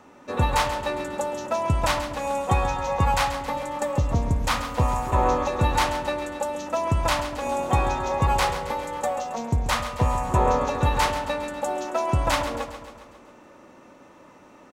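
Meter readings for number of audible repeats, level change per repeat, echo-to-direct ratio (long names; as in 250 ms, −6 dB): 6, −4.5 dB, −9.0 dB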